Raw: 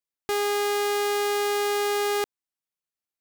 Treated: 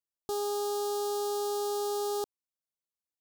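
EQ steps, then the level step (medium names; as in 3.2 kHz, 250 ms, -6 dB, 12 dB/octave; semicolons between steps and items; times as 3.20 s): Butterworth band-stop 2.1 kHz, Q 0.81; -6.0 dB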